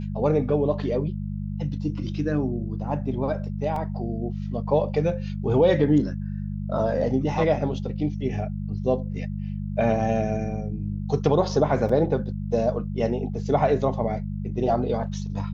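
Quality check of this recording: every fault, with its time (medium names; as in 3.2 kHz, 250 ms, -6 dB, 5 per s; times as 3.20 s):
hum 50 Hz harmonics 4 -30 dBFS
3.76 s: dropout 3.1 ms
11.89 s: dropout 4.1 ms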